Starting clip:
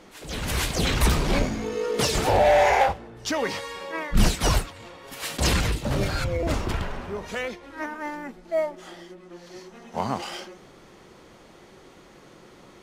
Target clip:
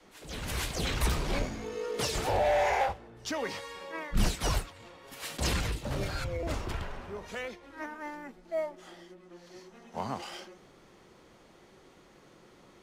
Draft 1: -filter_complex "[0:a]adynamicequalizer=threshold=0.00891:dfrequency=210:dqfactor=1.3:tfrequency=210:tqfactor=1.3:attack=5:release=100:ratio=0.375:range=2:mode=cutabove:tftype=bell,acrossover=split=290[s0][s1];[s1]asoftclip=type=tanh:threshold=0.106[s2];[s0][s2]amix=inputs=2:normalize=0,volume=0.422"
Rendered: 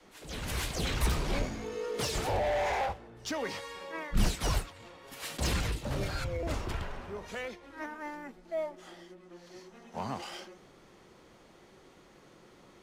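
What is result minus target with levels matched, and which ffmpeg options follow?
saturation: distortion +16 dB
-filter_complex "[0:a]adynamicequalizer=threshold=0.00891:dfrequency=210:dqfactor=1.3:tfrequency=210:tqfactor=1.3:attack=5:release=100:ratio=0.375:range=2:mode=cutabove:tftype=bell,acrossover=split=290[s0][s1];[s1]asoftclip=type=tanh:threshold=0.398[s2];[s0][s2]amix=inputs=2:normalize=0,volume=0.422"

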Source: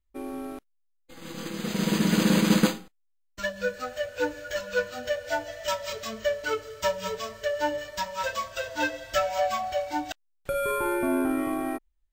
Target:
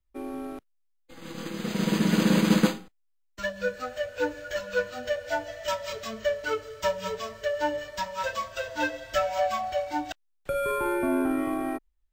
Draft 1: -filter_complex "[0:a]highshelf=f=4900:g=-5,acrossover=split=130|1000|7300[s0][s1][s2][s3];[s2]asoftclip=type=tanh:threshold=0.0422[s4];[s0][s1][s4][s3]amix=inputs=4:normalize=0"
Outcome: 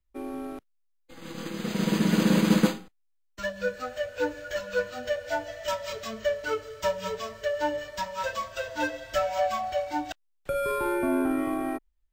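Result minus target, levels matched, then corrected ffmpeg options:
saturation: distortion +12 dB
-filter_complex "[0:a]highshelf=f=4900:g=-5,acrossover=split=130|1000|7300[s0][s1][s2][s3];[s2]asoftclip=type=tanh:threshold=0.112[s4];[s0][s1][s4][s3]amix=inputs=4:normalize=0"

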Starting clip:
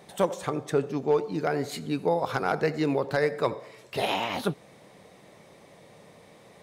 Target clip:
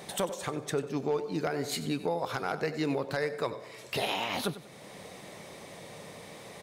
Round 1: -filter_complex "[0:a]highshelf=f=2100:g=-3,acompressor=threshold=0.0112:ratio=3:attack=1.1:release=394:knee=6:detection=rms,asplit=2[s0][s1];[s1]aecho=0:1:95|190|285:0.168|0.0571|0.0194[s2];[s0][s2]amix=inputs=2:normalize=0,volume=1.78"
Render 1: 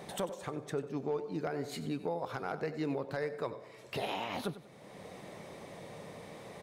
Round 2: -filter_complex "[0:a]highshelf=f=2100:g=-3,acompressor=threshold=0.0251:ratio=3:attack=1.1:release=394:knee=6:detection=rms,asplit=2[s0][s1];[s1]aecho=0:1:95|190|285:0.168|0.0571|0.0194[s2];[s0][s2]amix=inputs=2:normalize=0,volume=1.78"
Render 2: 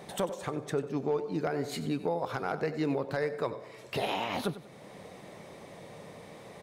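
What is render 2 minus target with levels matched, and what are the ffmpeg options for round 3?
4 kHz band -4.0 dB
-filter_complex "[0:a]highshelf=f=2100:g=5.5,acompressor=threshold=0.0251:ratio=3:attack=1.1:release=394:knee=6:detection=rms,asplit=2[s0][s1];[s1]aecho=0:1:95|190|285:0.168|0.0571|0.0194[s2];[s0][s2]amix=inputs=2:normalize=0,volume=1.78"

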